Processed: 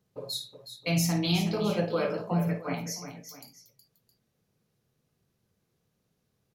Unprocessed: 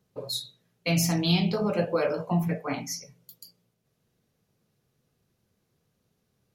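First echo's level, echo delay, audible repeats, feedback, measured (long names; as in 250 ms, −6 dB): −10.5 dB, 53 ms, 3, repeats not evenly spaced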